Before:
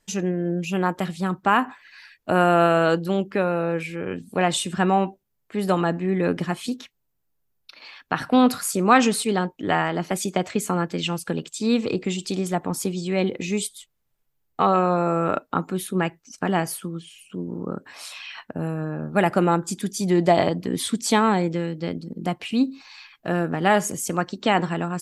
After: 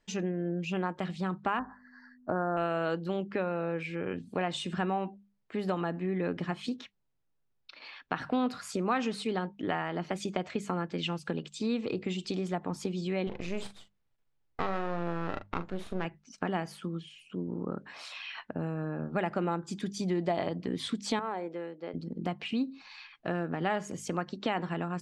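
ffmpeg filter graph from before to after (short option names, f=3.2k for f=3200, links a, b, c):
-filter_complex "[0:a]asettb=1/sr,asplit=3[a][b][c];[a]atrim=end=1.594[d];[b]atrim=start=1.59:end=2.57,asetpts=PTS-STARTPTS,afade=t=in:d=0.004:c=qsin,afade=t=out:st=0.976:d=0.004:c=qsin,equalizer=f=7.1k:t=o:w=2:g=-13,aeval=exprs='val(0)+0.0112*(sin(2*PI*50*n/s)+sin(2*PI*2*50*n/s)/2+sin(2*PI*3*50*n/s)/3+sin(2*PI*4*50*n/s)/4+sin(2*PI*5*50*n/s)/5)':c=same,asuperstop=centerf=2900:order=12:qfactor=1.1[e];[c]atrim=start=2.566[f];[d][e]acrossfade=d=0.004:c1=hsin:c2=qsin[g];[g][f]acrossfade=d=0.004:c1=qsin:c2=hsin,asettb=1/sr,asplit=3[h][i][j];[h]atrim=end=13.274[k];[i]atrim=start=13.27:end=16.05,asetpts=PTS-STARTPTS,afade=t=in:d=0.004:c=qsin,afade=t=out:st=2.776:d=0.004:c=qsin,aeval=exprs='max(val(0),0)':c=same,asplit=2[l][m];[m]adelay=41,volume=-10.5dB[n];[l][n]amix=inputs=2:normalize=0,atrim=end_sample=122598[o];[j]atrim=start=16.046[p];[k][o]acrossfade=d=0.004:c1=hsin:c2=qsin[q];[q][p]acrossfade=d=0.004:c1=qsin:c2=hsin,asettb=1/sr,asplit=3[r][s][t];[r]atrim=end=21.194[u];[s]atrim=start=21.19:end=21.94,asetpts=PTS-STARTPTS,afade=t=in:d=0.004:c=qsin,afade=t=out:st=0.746:d=0.004:c=qsin,highpass=510,equalizer=f=5.1k:w=0.35:g=-14[v];[t]atrim=start=21.936[w];[u][v]acrossfade=d=0.004:c1=hsin:c2=qsin[x];[x][w]acrossfade=d=0.004:c1=qsin:c2=hsin,lowpass=4.4k,bandreject=f=50:t=h:w=6,bandreject=f=100:t=h:w=6,bandreject=f=150:t=h:w=6,bandreject=f=200:t=h:w=6,acompressor=threshold=-27dB:ratio=2.5,volume=-3.5dB"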